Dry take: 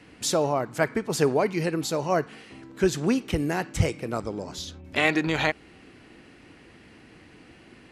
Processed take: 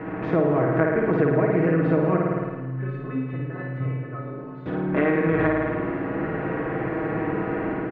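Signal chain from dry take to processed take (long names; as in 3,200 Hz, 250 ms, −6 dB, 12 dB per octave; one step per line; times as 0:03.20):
compressor on every frequency bin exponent 0.6
dynamic equaliser 840 Hz, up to −8 dB, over −38 dBFS, Q 1.7
0:02.17–0:04.66: stiff-string resonator 130 Hz, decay 0.6 s, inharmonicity 0.008
flutter between parallel walls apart 9.3 metres, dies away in 1.1 s
automatic gain control gain up to 4.5 dB
low-pass filter 1,600 Hz 24 dB per octave
low-shelf EQ 110 Hz −5 dB
mains-hum notches 50/100/150 Hz
comb filter 6.3 ms, depth 74%
downward compressor 4 to 1, threshold −19 dBFS, peak gain reduction 8 dB
level +1.5 dB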